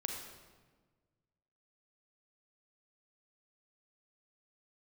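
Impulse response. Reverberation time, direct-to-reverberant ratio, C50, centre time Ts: 1.4 s, 2.0 dB, 3.0 dB, 50 ms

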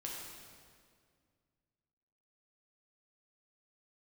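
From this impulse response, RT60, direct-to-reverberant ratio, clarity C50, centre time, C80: 2.1 s, -3.5 dB, 0.0 dB, 98 ms, 1.5 dB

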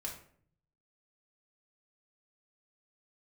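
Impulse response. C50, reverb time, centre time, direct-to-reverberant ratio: 7.0 dB, 0.55 s, 24 ms, -2.0 dB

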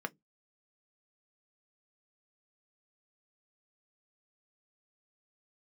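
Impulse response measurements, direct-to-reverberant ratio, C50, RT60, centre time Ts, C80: 7.0 dB, 31.5 dB, not exponential, 2 ms, 44.5 dB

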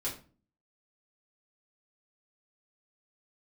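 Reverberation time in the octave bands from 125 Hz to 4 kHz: 0.60, 0.60, 0.40, 0.35, 0.30, 0.30 s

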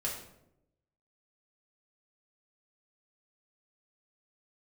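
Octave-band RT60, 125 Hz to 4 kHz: 1.1, 1.0, 0.95, 0.70, 0.60, 0.50 s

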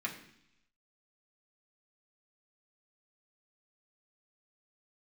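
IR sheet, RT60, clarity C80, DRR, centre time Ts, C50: 0.70 s, 12.0 dB, -3.0 dB, 18 ms, 9.5 dB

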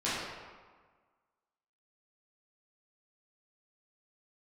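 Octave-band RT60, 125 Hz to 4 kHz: 1.4, 1.5, 1.5, 1.5, 1.3, 0.95 s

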